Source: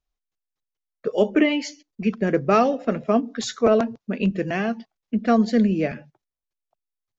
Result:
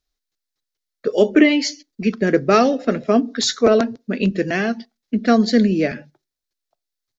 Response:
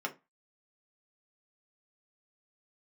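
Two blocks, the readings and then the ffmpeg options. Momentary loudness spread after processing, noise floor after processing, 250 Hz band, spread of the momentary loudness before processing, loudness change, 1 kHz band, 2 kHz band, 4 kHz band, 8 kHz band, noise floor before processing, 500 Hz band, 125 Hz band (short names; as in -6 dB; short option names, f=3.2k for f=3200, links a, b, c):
10 LU, -83 dBFS, +4.0 dB, 10 LU, +4.0 dB, +2.0 dB, +6.0 dB, +9.0 dB, n/a, under -85 dBFS, +4.0 dB, +2.5 dB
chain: -filter_complex "[0:a]firequalizer=gain_entry='entry(190,0);entry(280,5);entry(920,-3);entry(1700,5);entry(2800,1);entry(4100,11);entry(8100,4)':delay=0.05:min_phase=1,asplit=2[a][b];[1:a]atrim=start_sample=2205[c];[b][c]afir=irnorm=-1:irlink=0,volume=-20dB[d];[a][d]amix=inputs=2:normalize=0,volume=1.5dB"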